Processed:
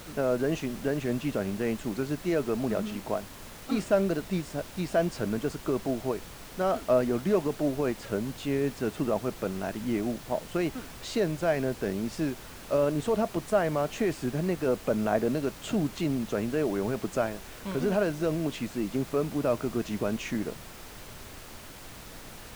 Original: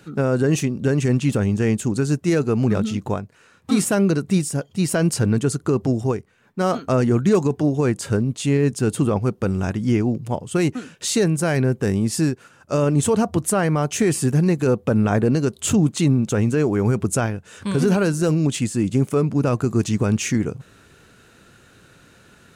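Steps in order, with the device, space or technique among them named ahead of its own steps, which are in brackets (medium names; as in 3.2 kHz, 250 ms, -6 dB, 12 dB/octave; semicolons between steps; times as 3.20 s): horn gramophone (band-pass 210–3800 Hz; peaking EQ 630 Hz +11 dB 0.23 oct; wow and flutter; pink noise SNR 15 dB); trim -8 dB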